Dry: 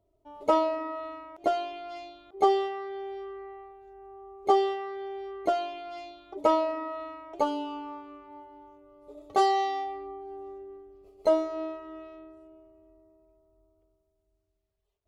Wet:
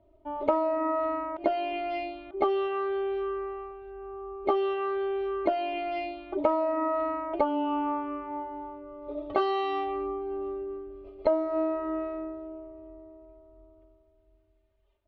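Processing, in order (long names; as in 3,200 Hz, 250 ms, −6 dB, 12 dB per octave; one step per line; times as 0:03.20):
low-pass filter 3,300 Hz 24 dB per octave
comb filter 3.3 ms, depth 75%
downward compressor 4 to 1, threshold −32 dBFS, peak gain reduction 15.5 dB
level +7.5 dB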